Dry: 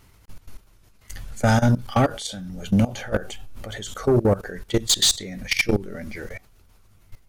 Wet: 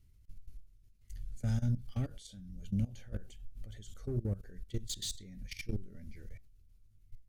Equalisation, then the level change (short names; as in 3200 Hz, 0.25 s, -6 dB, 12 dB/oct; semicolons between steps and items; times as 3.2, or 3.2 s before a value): passive tone stack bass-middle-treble 10-0-1; 0.0 dB